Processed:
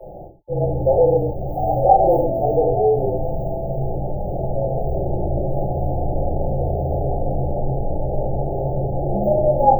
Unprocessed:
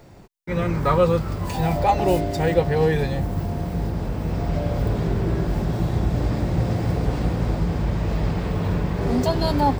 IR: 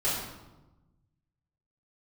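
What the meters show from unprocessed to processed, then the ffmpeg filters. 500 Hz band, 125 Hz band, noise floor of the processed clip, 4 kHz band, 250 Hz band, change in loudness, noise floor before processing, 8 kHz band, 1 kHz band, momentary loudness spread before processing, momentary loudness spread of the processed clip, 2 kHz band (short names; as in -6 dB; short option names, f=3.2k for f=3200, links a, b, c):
+5.5 dB, -1.0 dB, -32 dBFS, under -40 dB, -3.5 dB, +2.0 dB, -31 dBFS, n/a, +5.5 dB, 7 LU, 10 LU, under -40 dB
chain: -filter_complex "[0:a]equalizer=f=420:w=0.42:g=6.5[a];[1:a]atrim=start_sample=2205,afade=t=out:st=0.26:d=0.01,atrim=end_sample=11907,asetrate=61740,aresample=44100[b];[a][b]afir=irnorm=-1:irlink=0,acrossover=split=830|4000[c][d][e];[c]asoftclip=type=tanh:threshold=-5.5dB[f];[f][d][e]amix=inputs=3:normalize=0,afreqshift=-37,equalizer=f=100:t=o:w=0.67:g=-7,equalizer=f=250:t=o:w=0.67:g=-11,equalizer=f=630:t=o:w=0.67:g=7,equalizer=f=16k:t=o:w=0.67:g=-3,areverse,acompressor=mode=upward:threshold=-18dB:ratio=2.5,areverse,afftfilt=real='re*(1-between(b*sr/4096,880,12000))':imag='im*(1-between(b*sr/4096,880,12000))':win_size=4096:overlap=0.75,volume=-7.5dB"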